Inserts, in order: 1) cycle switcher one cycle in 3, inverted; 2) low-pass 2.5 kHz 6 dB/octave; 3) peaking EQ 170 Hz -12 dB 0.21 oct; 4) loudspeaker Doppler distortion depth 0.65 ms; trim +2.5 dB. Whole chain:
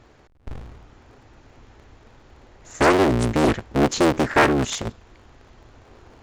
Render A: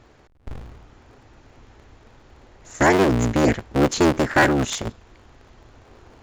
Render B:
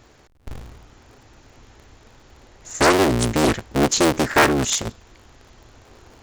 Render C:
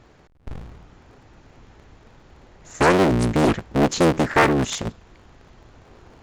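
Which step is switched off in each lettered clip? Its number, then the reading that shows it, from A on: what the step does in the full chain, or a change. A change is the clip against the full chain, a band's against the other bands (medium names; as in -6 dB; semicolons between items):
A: 4, 4 kHz band -1.5 dB; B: 2, 8 kHz band +8.0 dB; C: 3, 125 Hz band +2.0 dB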